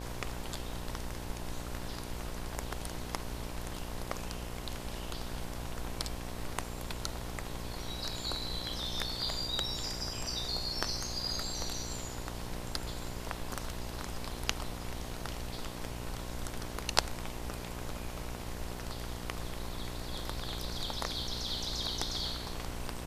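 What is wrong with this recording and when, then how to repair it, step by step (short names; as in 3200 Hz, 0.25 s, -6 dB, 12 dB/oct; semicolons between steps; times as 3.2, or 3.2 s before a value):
buzz 60 Hz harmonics 18 -43 dBFS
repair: de-hum 60 Hz, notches 18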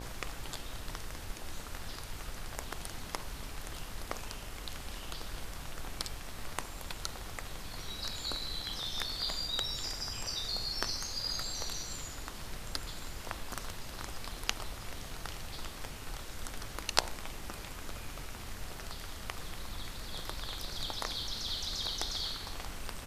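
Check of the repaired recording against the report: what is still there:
none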